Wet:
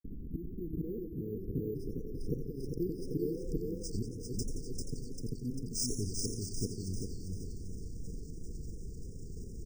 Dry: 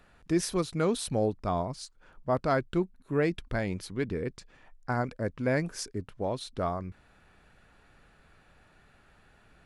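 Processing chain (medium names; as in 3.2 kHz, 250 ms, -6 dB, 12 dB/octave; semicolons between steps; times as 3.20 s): inverted gate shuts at -23 dBFS, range -29 dB; bass shelf 73 Hz +10.5 dB; compression, threshold -44 dBFS, peak gain reduction 17 dB; feedback delay 395 ms, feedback 40%, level -4.5 dB; low-pass sweep 260 Hz -> 7.2 kHz, 0.43–3.48 s; transient shaper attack -6 dB, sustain +8 dB; brick-wall FIR band-stop 490–4900 Hz; 1.50–3.88 s: peaking EQ 470 Hz +9 dB 2 oct; phase dispersion lows, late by 44 ms, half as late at 2.5 kHz; careless resampling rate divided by 3×, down filtered, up hold; modulated delay 90 ms, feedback 69%, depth 171 cents, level -9 dB; trim +11 dB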